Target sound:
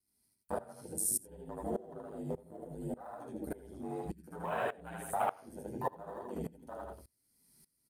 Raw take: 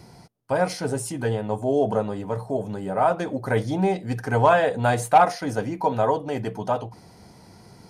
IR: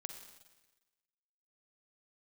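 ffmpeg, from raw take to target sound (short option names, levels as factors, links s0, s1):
-filter_complex "[0:a]aeval=exprs='val(0)*sin(2*PI*50*n/s)':c=same,flanger=delay=2.8:depth=7.6:regen=-51:speed=0.29:shape=sinusoidal,acrossover=split=480|1200[s0][s1][s2];[s1]aeval=exprs='sgn(val(0))*max(abs(val(0))-0.00794,0)':c=same[s3];[s0][s3][s2]amix=inputs=3:normalize=0,bandreject=f=92.9:t=h:w=4,bandreject=f=185.8:t=h:w=4,bandreject=f=278.7:t=h:w=4,bandreject=f=371.6:t=h:w=4,bandreject=f=464.5:t=h:w=4,bandreject=f=557.4:t=h:w=4,bandreject=f=650.3:t=h:w=4,bandreject=f=743.2:t=h:w=4,bandreject=f=836.1:t=h:w=4,bandreject=f=929:t=h:w=4,bandreject=f=1021.9:t=h:w=4,bandreject=f=1114.8:t=h:w=4,bandreject=f=1207.7:t=h:w=4,bandreject=f=1300.6:t=h:w=4,bandreject=f=1393.5:t=h:w=4,bandreject=f=1486.4:t=h:w=4,bandreject=f=1579.3:t=h:w=4,bandreject=f=1672.2:t=h:w=4,bandreject=f=1765.1:t=h:w=4,bandreject=f=1858:t=h:w=4,bandreject=f=1950.9:t=h:w=4,bandreject=f=2043.8:t=h:w=4,bandreject=f=2136.7:t=h:w=4,bandreject=f=2229.6:t=h:w=4,bandreject=f=2322.5:t=h:w=4,bandreject=f=2415.4:t=h:w=4,bandreject=f=2508.3:t=h:w=4,bandreject=f=2601.2:t=h:w=4,bandreject=f=2694.1:t=h:w=4,bandreject=f=2787:t=h:w=4,bandreject=f=2879.9:t=h:w=4,bandreject=f=2972.8:t=h:w=4,bandreject=f=3065.7:t=h:w=4,bandreject=f=3158.6:t=h:w=4,bandreject=f=3251.5:t=h:w=4,bandreject=f=3344.4:t=h:w=4,bandreject=f=3437.3:t=h:w=4,aexciter=amount=5.1:drive=6.3:freq=8500,afwtdn=0.02,lowshelf=f=64:g=-7.5,aecho=1:1:75.8|160.3:0.891|0.355,flanger=delay=2.6:depth=9.9:regen=-49:speed=0.64:shape=triangular,highshelf=f=3700:g=11,acompressor=threshold=0.0112:ratio=2,aeval=exprs='val(0)*pow(10,-21*if(lt(mod(-1.7*n/s,1),2*abs(-1.7)/1000),1-mod(-1.7*n/s,1)/(2*abs(-1.7)/1000),(mod(-1.7*n/s,1)-2*abs(-1.7)/1000)/(1-2*abs(-1.7)/1000))/20)':c=same,volume=1.78"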